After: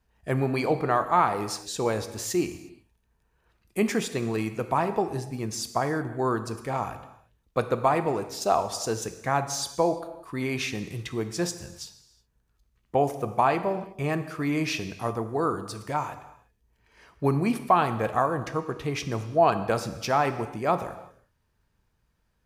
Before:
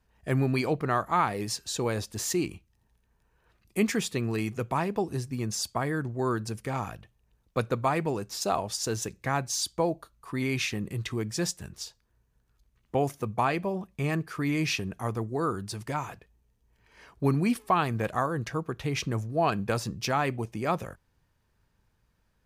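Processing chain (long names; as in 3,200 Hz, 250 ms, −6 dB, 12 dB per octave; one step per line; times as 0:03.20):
dynamic equaliser 710 Hz, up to +7 dB, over −40 dBFS, Q 0.73
reverb whose tail is shaped and stops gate 390 ms falling, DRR 9.5 dB
level −1.5 dB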